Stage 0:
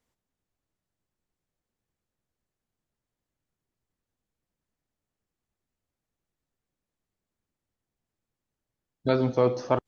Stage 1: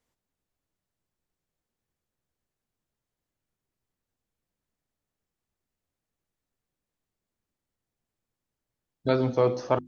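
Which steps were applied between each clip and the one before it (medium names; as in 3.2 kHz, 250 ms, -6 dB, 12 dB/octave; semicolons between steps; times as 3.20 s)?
hum notches 50/100/150/200/250/300/350 Hz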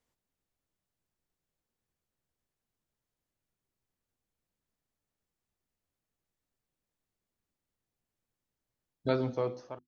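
fade out at the end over 1.01 s; trim -2.5 dB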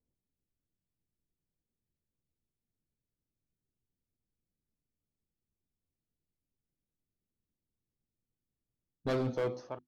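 level-controlled noise filter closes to 330 Hz; hard clipper -28.5 dBFS, distortion -8 dB; trim +1.5 dB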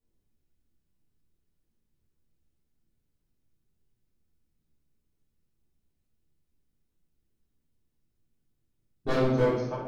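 simulated room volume 260 m³, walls mixed, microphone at 3.4 m; trim -2.5 dB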